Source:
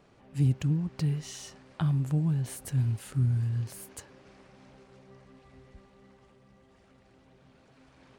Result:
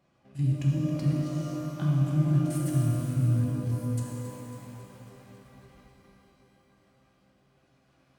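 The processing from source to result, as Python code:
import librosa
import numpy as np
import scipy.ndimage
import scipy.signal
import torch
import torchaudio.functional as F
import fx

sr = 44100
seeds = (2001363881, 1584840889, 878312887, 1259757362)

p1 = fx.level_steps(x, sr, step_db=14)
p2 = fx.notch_comb(p1, sr, f0_hz=450.0)
p3 = fx.wow_flutter(p2, sr, seeds[0], rate_hz=2.1, depth_cents=17.0)
p4 = p3 + fx.echo_feedback(p3, sr, ms=274, feedback_pct=59, wet_db=-11.5, dry=0)
y = fx.rev_shimmer(p4, sr, seeds[1], rt60_s=2.6, semitones=12, shimmer_db=-8, drr_db=-2.5)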